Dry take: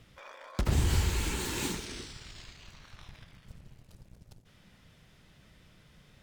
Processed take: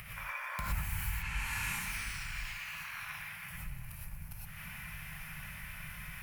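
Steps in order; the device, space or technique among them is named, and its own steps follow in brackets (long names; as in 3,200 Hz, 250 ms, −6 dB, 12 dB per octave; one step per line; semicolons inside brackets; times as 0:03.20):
0:01.09–0:01.79: low-pass filter 4,700 Hz → 11,000 Hz 12 dB per octave
0:02.46–0:03.52: high-pass filter 400 Hz 6 dB per octave
drawn EQ curve 170 Hz 0 dB, 320 Hz −30 dB, 750 Hz −2 dB, 2,400 Hz +9 dB, 3,500 Hz −8 dB, 7,900 Hz −3 dB, 11,000 Hz +14 dB
upward and downward compression (upward compression, threshold −35 dBFS; downward compressor 5 to 1, threshold −35 dBFS, peak gain reduction 12.5 dB)
reverb whose tail is shaped and stops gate 140 ms rising, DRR −5 dB
level −4 dB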